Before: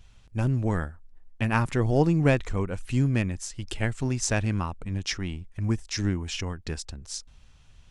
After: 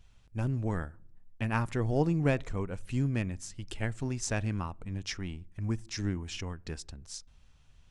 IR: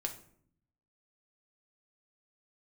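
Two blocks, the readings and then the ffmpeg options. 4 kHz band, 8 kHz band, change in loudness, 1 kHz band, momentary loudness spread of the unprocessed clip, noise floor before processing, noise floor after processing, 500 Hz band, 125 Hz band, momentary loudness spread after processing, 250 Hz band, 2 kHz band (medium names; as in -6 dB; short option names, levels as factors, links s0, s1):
-7.0 dB, -7.0 dB, -6.0 dB, -6.0 dB, 13 LU, -55 dBFS, -60 dBFS, -6.0 dB, -6.0 dB, 14 LU, -6.0 dB, -6.5 dB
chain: -filter_complex "[0:a]asplit=2[s0][s1];[1:a]atrim=start_sample=2205,lowpass=2500[s2];[s1][s2]afir=irnorm=-1:irlink=0,volume=0.15[s3];[s0][s3]amix=inputs=2:normalize=0,volume=0.447"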